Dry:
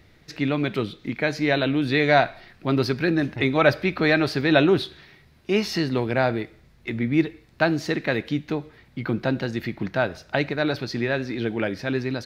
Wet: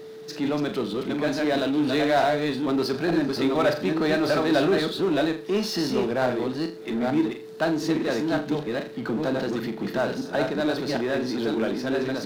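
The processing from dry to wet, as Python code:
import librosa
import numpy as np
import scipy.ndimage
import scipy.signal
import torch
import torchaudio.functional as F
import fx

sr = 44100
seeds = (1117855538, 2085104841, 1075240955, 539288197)

y = fx.reverse_delay(x, sr, ms=444, wet_db=-3)
y = scipy.signal.sosfilt(scipy.signal.butter(4, 170.0, 'highpass', fs=sr, output='sos'), y)
y = fx.peak_eq(y, sr, hz=2200.0, db=-10.5, octaves=0.62)
y = fx.room_flutter(y, sr, wall_m=6.9, rt60_s=0.24)
y = fx.power_curve(y, sr, exponent=0.7)
y = y + 10.0 ** (-32.0 / 20.0) * np.sin(2.0 * np.pi * 440.0 * np.arange(len(y)) / sr)
y = F.gain(torch.from_numpy(y), -6.5).numpy()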